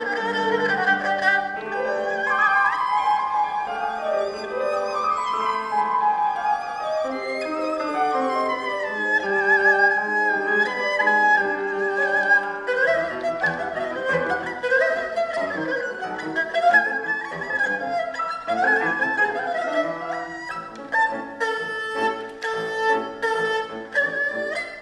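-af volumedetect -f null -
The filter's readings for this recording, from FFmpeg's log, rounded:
mean_volume: -22.8 dB
max_volume: -5.7 dB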